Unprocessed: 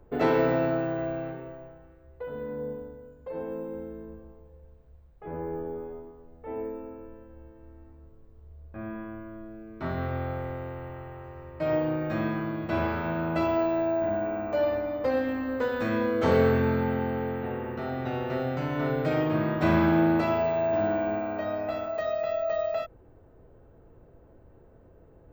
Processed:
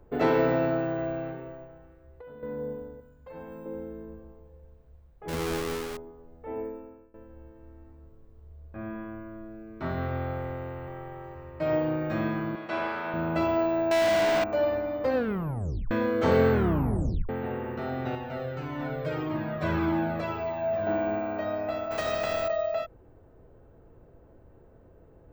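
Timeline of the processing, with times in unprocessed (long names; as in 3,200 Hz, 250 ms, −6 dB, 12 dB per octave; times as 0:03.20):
0:01.64–0:02.43: downward compressor, threshold −43 dBFS
0:03.00–0:03.66: parametric band 410 Hz −10.5 dB 1.5 octaves
0:05.28–0:05.97: each half-wave held at its own peak
0:06.59–0:07.14: fade out linear, to −22 dB
0:09.10–0:09.76: notch filter 3,200 Hz
0:10.87–0:11.35: comb filter 5.2 ms
0:12.55–0:13.14: meter weighting curve A
0:13.91–0:14.44: mid-hump overdrive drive 30 dB, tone 8,000 Hz, clips at −18 dBFS
0:15.15: tape stop 0.76 s
0:16.52: tape stop 0.77 s
0:18.15–0:20.87: flanger whose copies keep moving one way falling 1.7 Hz
0:21.90–0:22.47: compressing power law on the bin magnitudes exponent 0.6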